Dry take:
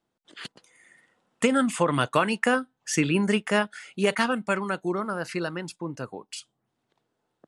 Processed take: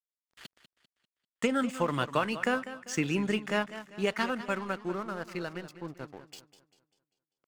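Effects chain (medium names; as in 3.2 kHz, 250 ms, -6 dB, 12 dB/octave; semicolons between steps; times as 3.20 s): peaking EQ 10 kHz -12.5 dB 0.33 oct; crossover distortion -42 dBFS; modulated delay 197 ms, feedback 42%, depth 92 cents, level -13.5 dB; trim -5.5 dB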